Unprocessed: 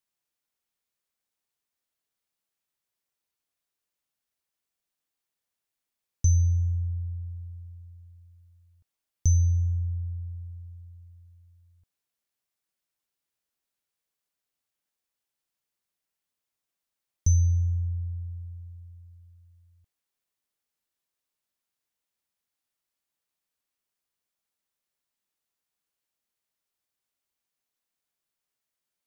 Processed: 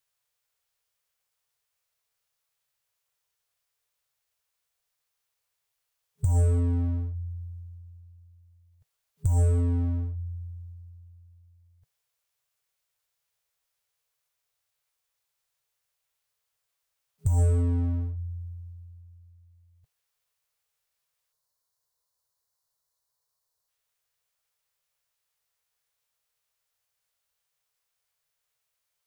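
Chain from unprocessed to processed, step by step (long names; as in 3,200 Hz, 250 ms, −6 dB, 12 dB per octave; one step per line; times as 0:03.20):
brick-wall band-stop 160–410 Hz
in parallel at −4.5 dB: wave folding −30.5 dBFS
on the sum: gain on a spectral selection 0:21.32–0:23.69, 1,100–2,800 Hz −12 dB
formants moved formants +5 semitones
level +1.5 dB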